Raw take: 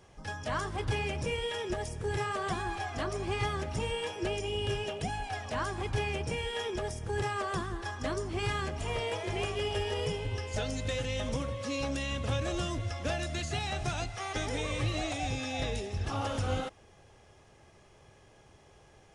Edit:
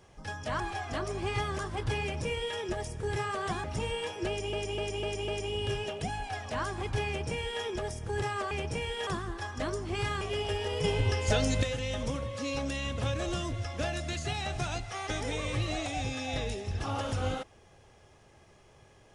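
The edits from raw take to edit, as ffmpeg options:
-filter_complex "[0:a]asplit=13[s0][s1][s2][s3][s4][s5][s6][s7][s8][s9][s10][s11][s12];[s0]atrim=end=0.602[s13];[s1]atrim=start=2.648:end=3.642[s14];[s2]atrim=start=0.598:end=2.652[s15];[s3]atrim=start=3.638:end=4.532[s16];[s4]atrim=start=4.278:end=4.532[s17];[s5]atrim=start=4.278:end=4.532[s18];[s6]atrim=start=4.278:end=4.532[s19];[s7]atrim=start=4.278:end=7.512[s20];[s8]atrim=start=6.068:end=6.632[s21];[s9]atrim=start=7.508:end=8.652[s22];[s10]atrim=start=9.468:end=10.102[s23];[s11]atrim=start=10.098:end=10.892,asetpts=PTS-STARTPTS,volume=2.24[s24];[s12]atrim=start=10.888[s25];[s13][s14]acrossfade=d=0.004:c1=hsin:c2=hsin[s26];[s26][s15]acrossfade=d=0.004:c1=hsin:c2=hsin[s27];[s27][s16]acrossfade=d=0.004:c1=hsin:c2=hsin[s28];[s28][s17]acrossfade=d=0.004:c1=hsin:c2=hsin[s29];[s29][s18]acrossfade=d=0.004:c1=hsin:c2=hsin[s30];[s30][s19]acrossfade=d=0.004:c1=hsin:c2=hsin[s31];[s31][s20]acrossfade=d=0.004:c1=hsin:c2=hsin[s32];[s32][s21]acrossfade=d=0.004:c1=hsin:c2=hsin[s33];[s33][s22]acrossfade=d=0.004:c1=hsin:c2=hsin[s34];[s34][s23]acrossfade=d=0.004:c1=hsin:c2=hsin[s35];[s35][s24]acrossfade=d=0.004:c1=hsin:c2=hsin[s36];[s36][s25]acrossfade=d=0.004:c1=hsin:c2=hsin"

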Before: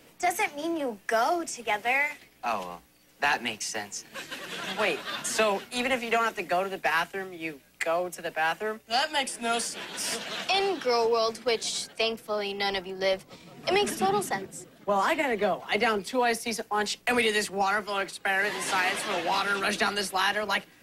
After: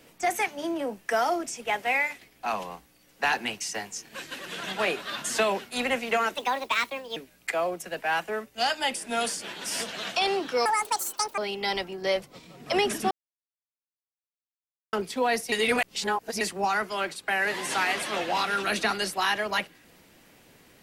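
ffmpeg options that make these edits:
-filter_complex "[0:a]asplit=9[s0][s1][s2][s3][s4][s5][s6][s7][s8];[s0]atrim=end=6.354[s9];[s1]atrim=start=6.35:end=7.49,asetpts=PTS-STARTPTS,asetrate=61740,aresample=44100[s10];[s2]atrim=start=7.486:end=10.984[s11];[s3]atrim=start=10.98:end=12.35,asetpts=PTS-STARTPTS,asetrate=83349,aresample=44100[s12];[s4]atrim=start=12.346:end=14.08,asetpts=PTS-STARTPTS,afade=t=out:st=1.73:d=0.004:c=hsin[s13];[s5]atrim=start=14.08:end=15.9,asetpts=PTS-STARTPTS,volume=0[s14];[s6]atrim=start=15.9:end=16.492,asetpts=PTS-STARTPTS,afade=t=in:d=0.004:c=hsin[s15];[s7]atrim=start=16.488:end=17.382,asetpts=PTS-STARTPTS,areverse[s16];[s8]atrim=start=17.378[s17];[s9][s10]acrossfade=d=0.004:c1=hsin:c2=hsin[s18];[s18][s11]acrossfade=d=0.004:c1=hsin:c2=hsin[s19];[s19][s12]acrossfade=d=0.004:c1=hsin:c2=hsin[s20];[s13][s14][s15]concat=n=3:v=0:a=1[s21];[s20][s21]acrossfade=d=0.004:c1=hsin:c2=hsin[s22];[s22][s16]acrossfade=d=0.004:c1=hsin:c2=hsin[s23];[s23][s17]acrossfade=d=0.004:c1=hsin:c2=hsin"

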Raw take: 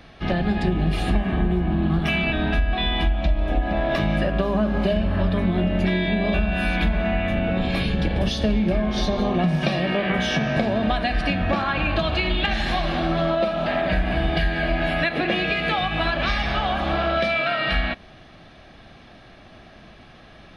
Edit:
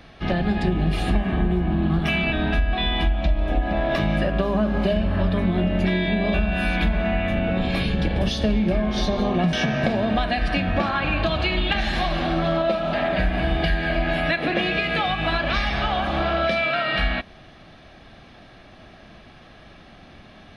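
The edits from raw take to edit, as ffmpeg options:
-filter_complex "[0:a]asplit=2[s0][s1];[s0]atrim=end=9.532[s2];[s1]atrim=start=10.258[s3];[s2][s3]acrossfade=d=0.004:c1=hsin:c2=hsin"

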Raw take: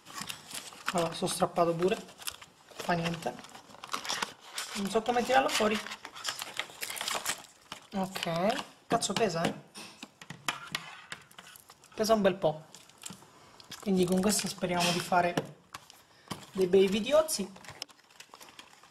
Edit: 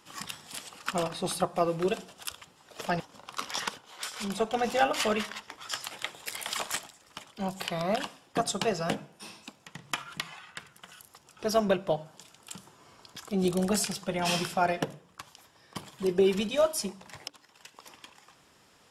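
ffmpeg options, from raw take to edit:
-filter_complex "[0:a]asplit=2[s0][s1];[s0]atrim=end=3.002[s2];[s1]atrim=start=3.548[s3];[s2][s3]acrossfade=d=0.004:c1=hsin:c2=hsin"

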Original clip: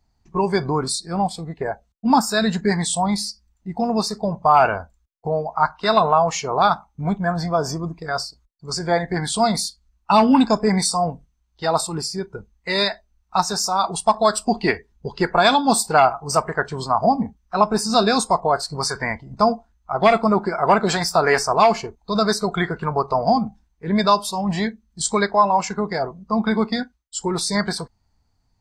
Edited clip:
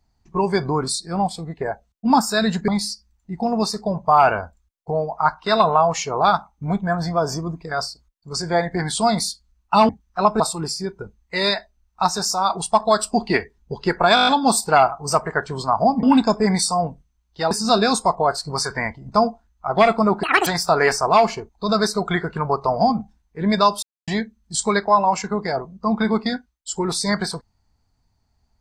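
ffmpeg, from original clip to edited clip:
-filter_complex "[0:a]asplit=16[s0][s1][s2][s3][s4][s5][s6][s7][s8][s9][s10][s11][s12][s13][s14][s15];[s0]atrim=end=2.682[s16];[s1]atrim=start=3.048:end=10.262[s17];[s2]atrim=start=17.248:end=17.762[s18];[s3]atrim=start=11.738:end=15.512[s19];[s4]atrim=start=15.488:end=15.512[s20];[s5]atrim=start=15.488:end=15.512[s21];[s6]atrim=start=15.488:end=15.512[s22];[s7]atrim=start=15.488:end=15.512[s23];[s8]atrim=start=15.488:end=15.512[s24];[s9]atrim=start=15.488:end=17.252[s25];[s10]atrim=start=10.258:end=11.742[s26];[s11]atrim=start=17.758:end=20.484[s27];[s12]atrim=start=20.48:end=20.93,asetpts=PTS-STARTPTS,asetrate=84231,aresample=44100,atrim=end_sample=10390,asetpts=PTS-STARTPTS[s28];[s13]atrim=start=20.926:end=24.29,asetpts=PTS-STARTPTS,afade=t=out:st=3.36:d=0.004:c=hsin[s29];[s14]atrim=start=24.29:end=24.54,asetpts=PTS-STARTPTS,volume=0[s30];[s15]atrim=start=24.54,asetpts=PTS-STARTPTS,afade=t=in:d=0.004:c=hsin[s31];[s16][s17]acrossfade=d=0.004:c1=hsin:c2=hsin[s32];[s32][s18]acrossfade=d=0.004:c1=hsin:c2=hsin[s33];[s33][s19]acrossfade=d=0.004:c1=hsin:c2=hsin[s34];[s34][s20]acrossfade=d=0.004:c1=hsin:c2=hsin[s35];[s35][s21]acrossfade=d=0.004:c1=hsin:c2=hsin[s36];[s36][s22]acrossfade=d=0.004:c1=hsin:c2=hsin[s37];[s37][s23]acrossfade=d=0.004:c1=hsin:c2=hsin[s38];[s38][s24]acrossfade=d=0.004:c1=hsin:c2=hsin[s39];[s39][s25]acrossfade=d=0.004:c1=hsin:c2=hsin[s40];[s40][s26]acrossfade=d=0.004:c1=hsin:c2=hsin[s41];[s41][s27]acrossfade=d=0.004:c1=hsin:c2=hsin[s42];[s42][s28]acrossfade=d=0.004:c1=hsin:c2=hsin[s43];[s29][s30][s31]concat=n=3:v=0:a=1[s44];[s43][s44]acrossfade=d=0.004:c1=hsin:c2=hsin"

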